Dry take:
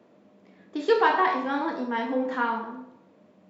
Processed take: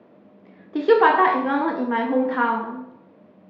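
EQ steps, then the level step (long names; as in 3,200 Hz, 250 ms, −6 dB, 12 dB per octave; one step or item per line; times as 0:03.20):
high-frequency loss of the air 260 metres
+6.5 dB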